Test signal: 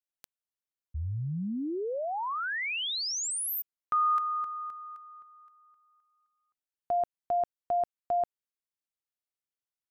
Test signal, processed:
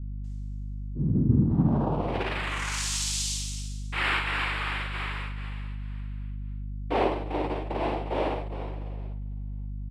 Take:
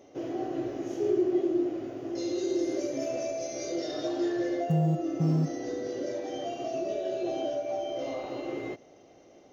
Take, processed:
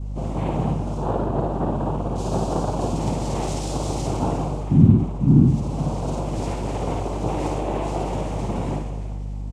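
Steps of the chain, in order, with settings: low shelf 160 Hz +11 dB; plate-style reverb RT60 1.8 s, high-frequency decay 0.9×, DRR 1 dB; flange 0.33 Hz, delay 9.6 ms, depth 2.8 ms, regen -49%; vocal rider within 5 dB 0.5 s; noise vocoder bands 4; early reflections 54 ms -4.5 dB, 67 ms -9 dB; hum 50 Hz, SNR 13 dB; tone controls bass +13 dB, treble +6 dB; gain -3.5 dB

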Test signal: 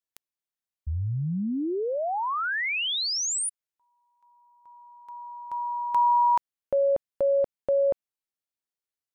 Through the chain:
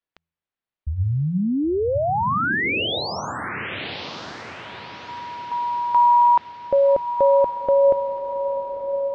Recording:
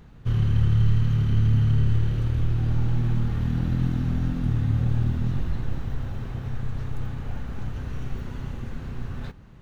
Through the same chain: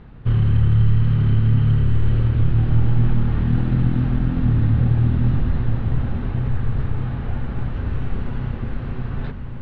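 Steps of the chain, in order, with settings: Bessel low-pass 2700 Hz, order 6; de-hum 82.72 Hz, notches 2; in parallel at +1 dB: limiter -17.5 dBFS; on the sum: diffused feedback echo 1.039 s, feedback 43%, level -8 dB

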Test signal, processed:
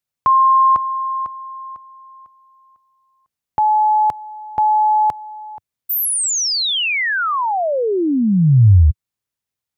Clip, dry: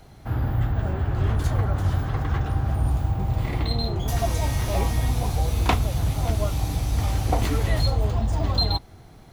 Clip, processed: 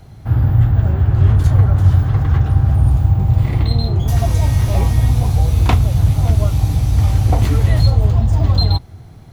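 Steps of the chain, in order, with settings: bell 100 Hz +11 dB 1.7 oct; gain +2 dB

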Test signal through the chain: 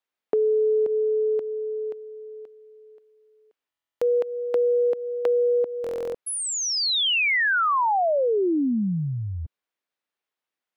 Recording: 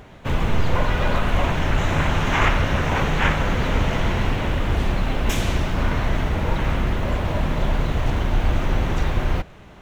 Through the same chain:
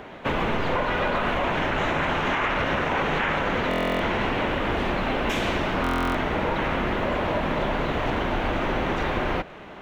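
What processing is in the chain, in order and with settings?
three-band isolator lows -15 dB, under 210 Hz, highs -13 dB, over 3800 Hz; limiter -17.5 dBFS; compressor 2.5:1, threshold -29 dBFS; stuck buffer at 3.69/5.82, samples 1024, times 13; gain +6.5 dB

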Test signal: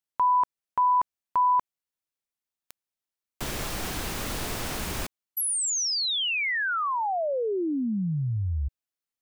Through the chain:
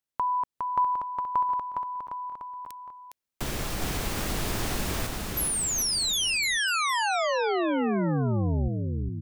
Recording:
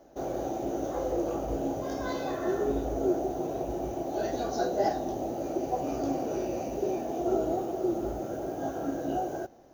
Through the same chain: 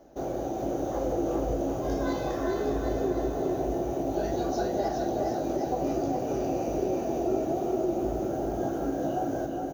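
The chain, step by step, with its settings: low shelf 360 Hz +4 dB; compressor 4:1, threshold -26 dBFS; on a send: bouncing-ball echo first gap 0.41 s, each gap 0.85×, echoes 5

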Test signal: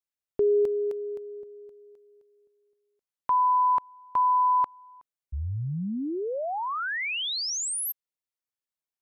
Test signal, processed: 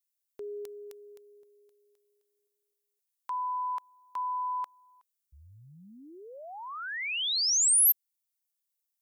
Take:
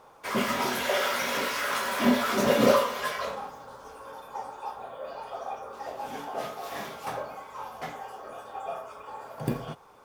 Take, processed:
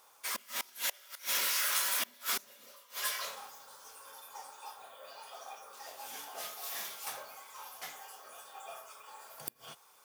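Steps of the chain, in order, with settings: flipped gate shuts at -17 dBFS, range -27 dB; pre-emphasis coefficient 0.97; gain +6.5 dB

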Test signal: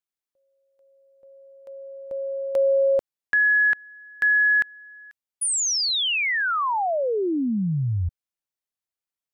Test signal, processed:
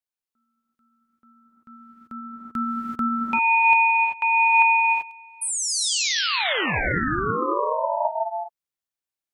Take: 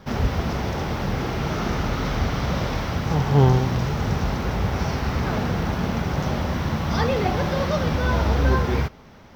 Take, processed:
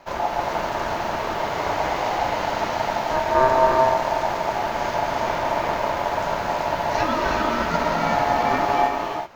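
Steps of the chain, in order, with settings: non-linear reverb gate 0.41 s rising, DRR 0 dB; ring modulator 780 Hz

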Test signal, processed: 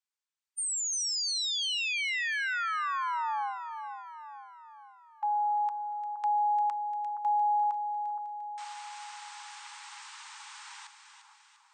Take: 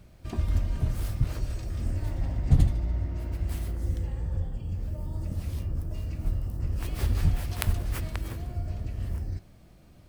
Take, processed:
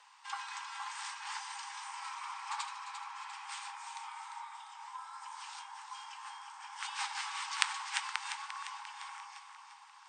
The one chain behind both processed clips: brick-wall FIR band-pass 380–8600 Hz; split-band echo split 1100 Hz, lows 0.468 s, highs 0.348 s, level -8.5 dB; frequency shift +410 Hz; gain +4 dB

